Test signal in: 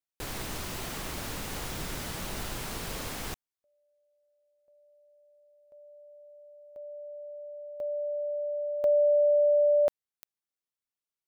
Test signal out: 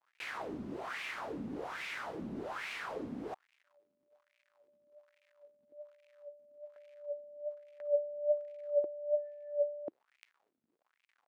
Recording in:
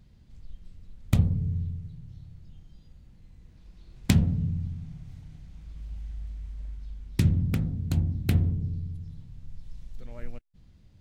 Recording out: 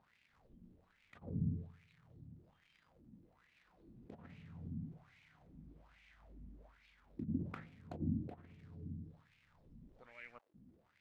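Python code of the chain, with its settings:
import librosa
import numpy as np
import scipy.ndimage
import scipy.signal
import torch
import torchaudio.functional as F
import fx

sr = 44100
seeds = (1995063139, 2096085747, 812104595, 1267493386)

y = fx.dmg_crackle(x, sr, seeds[0], per_s=190.0, level_db=-52.0)
y = fx.over_compress(y, sr, threshold_db=-26.0, ratio=-0.5)
y = fx.wah_lfo(y, sr, hz=1.2, low_hz=230.0, high_hz=2400.0, q=4.0)
y = y * librosa.db_to_amplitude(5.0)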